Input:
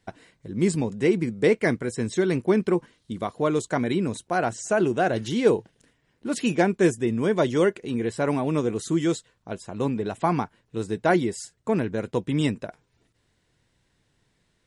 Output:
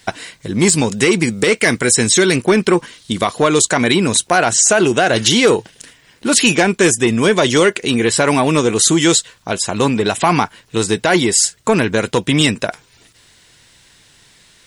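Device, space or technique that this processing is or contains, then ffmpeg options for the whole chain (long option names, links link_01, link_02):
mastering chain: -filter_complex "[0:a]asettb=1/sr,asplit=3[link_01][link_02][link_03];[link_01]atrim=end=0.674[link_04];[link_02]atrim=start=0.67:end=2.36,asetpts=PTS-STARTPTS,afade=type=in:duration=0.004:curve=qsin,afade=type=out:start_time=1.686:duration=0.004:curve=qsin,highshelf=frequency=4900:gain=5.5[link_05];[link_03]atrim=start=2.356[link_06];[link_04][link_05]acrossfade=duration=0.004:curve1=hsin:curve2=qsin[link_07];[link_07][link_06]acrossfade=duration=0.004:curve1=qsin:curve2=hsin,equalizer=frequency=1900:width_type=o:width=0.77:gain=-1.5,acompressor=threshold=-28dB:ratio=1.5,asoftclip=type=tanh:threshold=-16.5dB,tiltshelf=frequency=1100:gain=-7.5,alimiter=level_in=20.5dB:limit=-1dB:release=50:level=0:latency=1,volume=-1dB"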